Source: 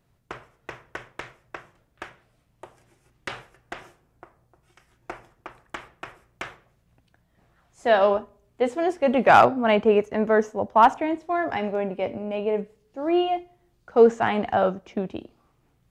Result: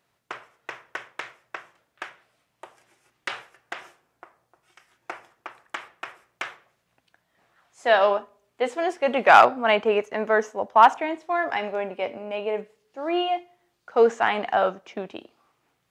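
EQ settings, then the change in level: high-pass 1 kHz 6 dB/octave; treble shelf 6.6 kHz -5.5 dB; +5.0 dB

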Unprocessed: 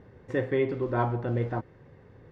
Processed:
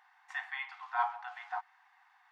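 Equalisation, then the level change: brick-wall FIR high-pass 710 Hz; 0.0 dB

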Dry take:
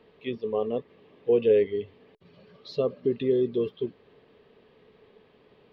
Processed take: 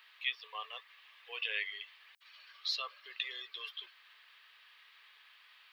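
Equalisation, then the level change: high-pass 1.3 kHz 24 dB/octave; tilt EQ +4.5 dB/octave; treble shelf 2.1 kHz -10 dB; +8.0 dB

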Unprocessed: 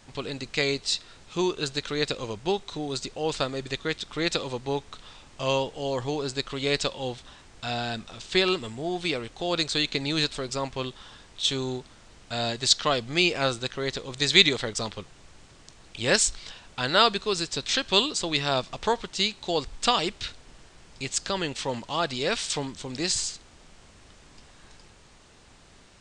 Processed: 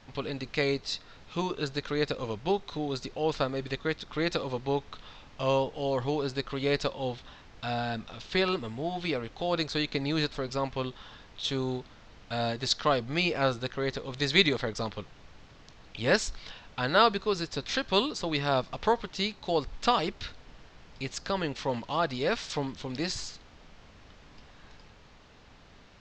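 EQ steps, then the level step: dynamic bell 3.1 kHz, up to -6 dB, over -40 dBFS, Q 1.3; boxcar filter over 5 samples; band-stop 360 Hz, Q 12; 0.0 dB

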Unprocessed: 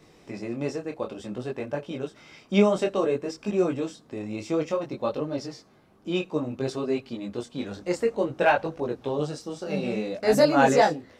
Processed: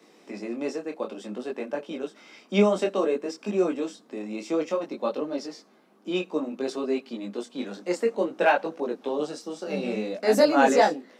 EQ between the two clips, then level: steep high-pass 190 Hz 48 dB/octave; 0.0 dB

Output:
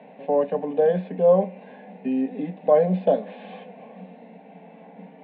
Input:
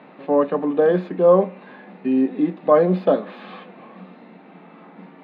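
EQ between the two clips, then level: cabinet simulation 120–3200 Hz, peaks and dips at 440 Hz +5 dB, 730 Hz +4 dB, 1.4 kHz +4 dB; dynamic bell 440 Hz, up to -5 dB, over -22 dBFS, Q 0.82; static phaser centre 340 Hz, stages 6; 0.0 dB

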